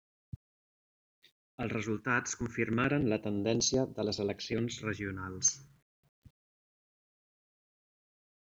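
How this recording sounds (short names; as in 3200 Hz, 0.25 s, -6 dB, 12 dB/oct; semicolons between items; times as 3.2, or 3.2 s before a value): phasing stages 4, 0.33 Hz, lowest notch 620–1900 Hz; a quantiser's noise floor 12-bit, dither none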